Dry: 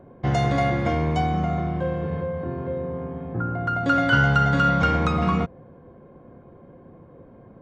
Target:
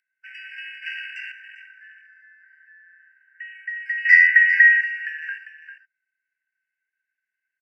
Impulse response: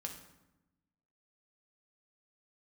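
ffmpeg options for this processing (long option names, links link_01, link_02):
-filter_complex "[0:a]acompressor=mode=upward:threshold=-42dB:ratio=2.5,afreqshift=490,afwtdn=0.0355,aecho=1:1:398:0.282,asettb=1/sr,asplit=3[link_01][link_02][link_03];[link_01]atrim=end=0.824[link_04];[link_02]atrim=start=0.82:end=1.32,asetpts=PTS-STARTPTS,afade=type=in:duration=0.004:curve=qsin,afade=type=out:start_time=0.496:duration=0.004:curve=qsin,acontrast=87[link_05];[link_03]atrim=start=1.316[link_06];[link_04][link_05]acrossfade=duration=0.004:curve1=hsin:curve2=qsin[link_07];[link_07][link_06]acrossfade=duration=0.004:curve1=qsin:curve2=hsin,asettb=1/sr,asplit=3[link_08][link_09][link_10];[link_08]atrim=end=4.054[link_11];[link_09]atrim=start=4.05:end=4.81,asetpts=PTS-STARTPTS,afade=type=in:duration=0.004:curve=qsin,afade=type=out:start_time=0.756:duration=0.004:curve=qsin,equalizer=frequency=1600:width_type=o:width=2.4:gain=13[link_12];[link_10]atrim=start=4.806[link_13];[link_11][link_12]acrossfade=duration=0.004:curve1=hsin:curve2=qsin[link_14];[link_14][link_13]acrossfade=duration=0.004:curve1=qsin:curve2=hsin,afftfilt=real='re*eq(mod(floor(b*sr/1024/1500),2),1)':imag='im*eq(mod(floor(b*sr/1024/1500),2),1)':win_size=1024:overlap=0.75,volume=-4dB"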